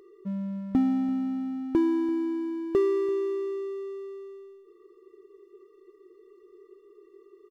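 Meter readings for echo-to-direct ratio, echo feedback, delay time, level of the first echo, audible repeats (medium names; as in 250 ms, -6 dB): -19.0 dB, no regular repeats, 339 ms, -19.0 dB, 1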